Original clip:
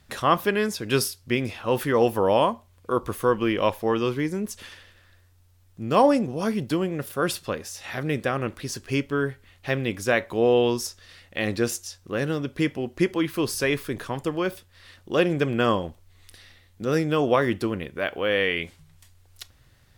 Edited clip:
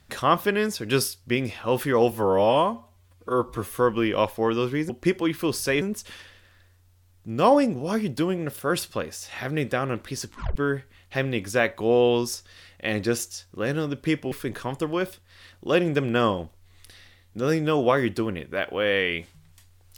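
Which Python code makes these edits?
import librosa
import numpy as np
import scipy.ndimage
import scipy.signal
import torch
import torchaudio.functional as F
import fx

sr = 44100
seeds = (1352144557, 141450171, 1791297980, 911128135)

y = fx.edit(x, sr, fx.stretch_span(start_s=2.11, length_s=1.11, factor=1.5),
    fx.tape_stop(start_s=8.79, length_s=0.29),
    fx.move(start_s=12.84, length_s=0.92, to_s=4.34), tone=tone)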